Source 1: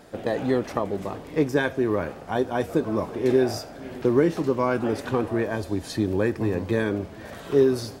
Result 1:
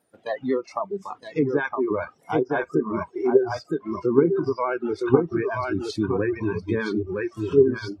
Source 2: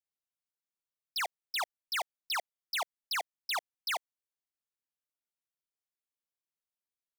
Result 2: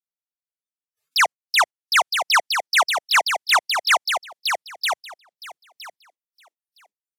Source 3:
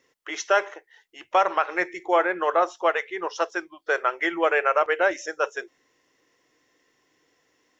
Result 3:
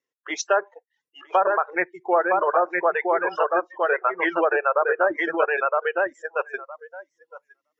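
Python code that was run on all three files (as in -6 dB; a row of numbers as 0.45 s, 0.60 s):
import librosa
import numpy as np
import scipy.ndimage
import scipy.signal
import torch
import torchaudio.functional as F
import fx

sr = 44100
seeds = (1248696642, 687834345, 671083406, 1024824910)

p1 = scipy.signal.sosfilt(scipy.signal.butter(2, 99.0, 'highpass', fs=sr, output='sos'), x)
p2 = p1 + fx.echo_feedback(p1, sr, ms=964, feedback_pct=15, wet_db=-3, dry=0)
p3 = fx.dereverb_blind(p2, sr, rt60_s=0.53)
p4 = fx.env_lowpass_down(p3, sr, base_hz=1400.0, full_db=-16.5)
p5 = fx.level_steps(p4, sr, step_db=16)
p6 = p4 + F.gain(torch.from_numpy(p5), 0.0).numpy()
p7 = fx.noise_reduce_blind(p6, sr, reduce_db=22)
p8 = fx.vibrato(p7, sr, rate_hz=14.0, depth_cents=32.0)
y = p8 * 10.0 ** (-24 / 20.0) / np.sqrt(np.mean(np.square(p8)))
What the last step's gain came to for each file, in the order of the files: -1.5 dB, +12.0 dB, -0.5 dB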